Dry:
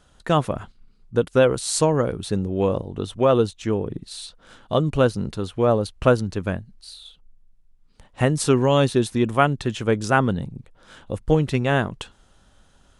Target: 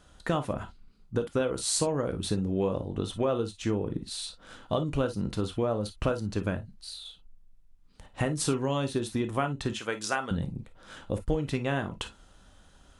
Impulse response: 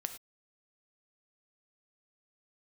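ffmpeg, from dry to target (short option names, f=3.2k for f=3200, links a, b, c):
-filter_complex "[0:a]asettb=1/sr,asplit=3[a][b][c];[a]atrim=end=9.734[d];[b]atrim=start=9.73:end=10.31,asetpts=PTS-STARTPTS,afade=t=in:d=0.004:c=qsin,afade=t=out:st=0.576:d=0.004:c=qsin,highpass=f=1.3k:p=1[e];[c]atrim=start=10.306[f];[d][e]acrossfade=d=0.004:c1=hsin:c2=qsin[g];[g][f]acrossfade=d=0.004:c1=qsin:c2=hsin,acompressor=threshold=-24dB:ratio=6[h];[1:a]atrim=start_sample=2205,asetrate=83790,aresample=44100[i];[h][i]afir=irnorm=-1:irlink=0,volume=6dB"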